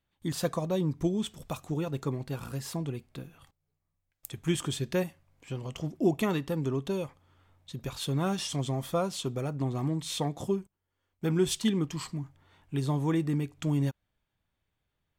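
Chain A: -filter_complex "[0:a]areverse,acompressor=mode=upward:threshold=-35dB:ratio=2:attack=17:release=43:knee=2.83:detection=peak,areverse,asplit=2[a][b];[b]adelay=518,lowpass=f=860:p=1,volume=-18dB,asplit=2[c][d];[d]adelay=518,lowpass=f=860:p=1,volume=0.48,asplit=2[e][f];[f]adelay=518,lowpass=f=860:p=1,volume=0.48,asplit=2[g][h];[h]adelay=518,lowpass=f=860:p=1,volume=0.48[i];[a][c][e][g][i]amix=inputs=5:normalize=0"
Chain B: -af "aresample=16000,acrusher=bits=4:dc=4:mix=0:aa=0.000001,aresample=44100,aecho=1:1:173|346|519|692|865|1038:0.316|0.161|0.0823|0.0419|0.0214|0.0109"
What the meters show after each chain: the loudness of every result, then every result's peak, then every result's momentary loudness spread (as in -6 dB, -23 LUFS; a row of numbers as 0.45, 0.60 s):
-32.0, -35.5 LUFS; -11.5, -9.5 dBFS; 16, 16 LU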